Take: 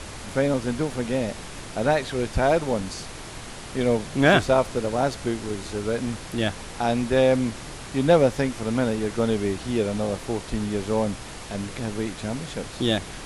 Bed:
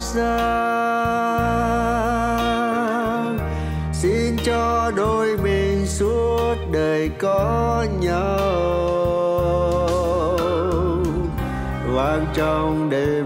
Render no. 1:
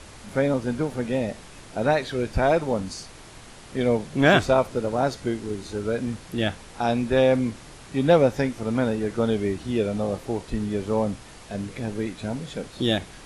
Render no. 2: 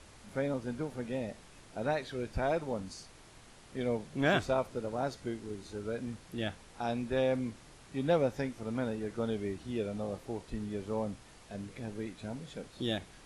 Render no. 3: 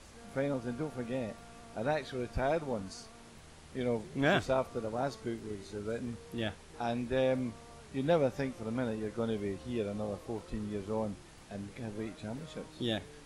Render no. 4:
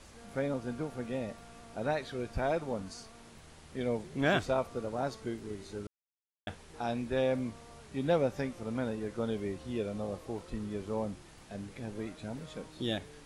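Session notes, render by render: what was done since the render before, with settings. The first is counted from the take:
noise print and reduce 7 dB
trim -11 dB
add bed -35 dB
5.87–6.47 s: mute

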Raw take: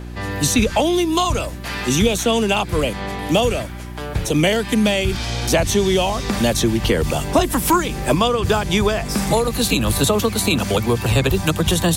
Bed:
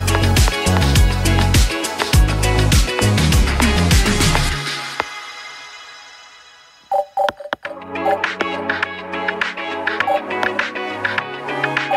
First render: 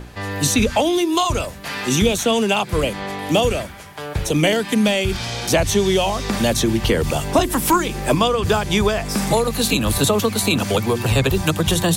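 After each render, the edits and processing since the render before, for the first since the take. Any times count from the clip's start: de-hum 60 Hz, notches 6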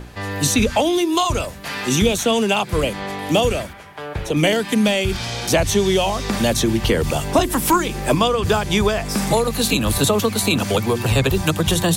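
3.73–4.37 s: tone controls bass -4 dB, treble -10 dB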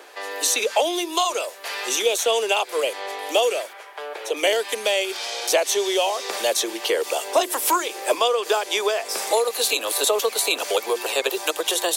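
dynamic bell 1.4 kHz, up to -4 dB, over -35 dBFS, Q 0.89; steep high-pass 410 Hz 36 dB/octave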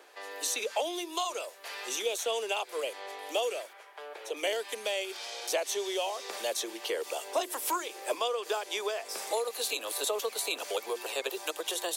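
trim -11 dB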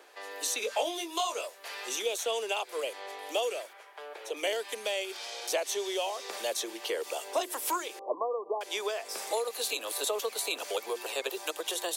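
0.61–1.48 s: doubling 21 ms -5 dB; 7.99–8.61 s: brick-wall FIR low-pass 1.2 kHz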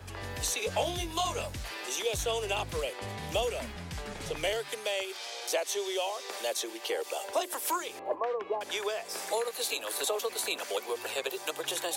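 add bed -27 dB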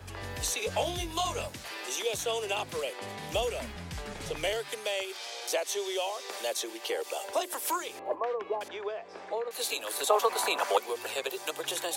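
1.48–3.33 s: high-pass 160 Hz; 8.68–9.51 s: tape spacing loss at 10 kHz 35 dB; 10.10–10.78 s: peaking EQ 970 Hz +14.5 dB 1.5 oct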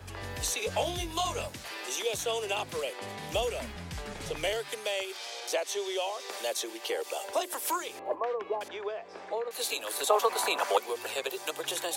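5.40–6.20 s: treble shelf 9.5 kHz -7 dB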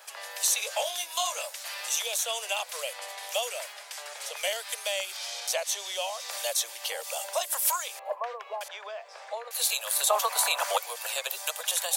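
elliptic high-pass 560 Hz, stop band 60 dB; treble shelf 4.4 kHz +11.5 dB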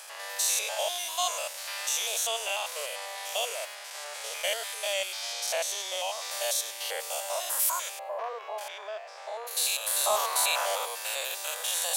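spectrogram pixelated in time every 100 ms; in parallel at -8 dB: hard clipper -25.5 dBFS, distortion -16 dB

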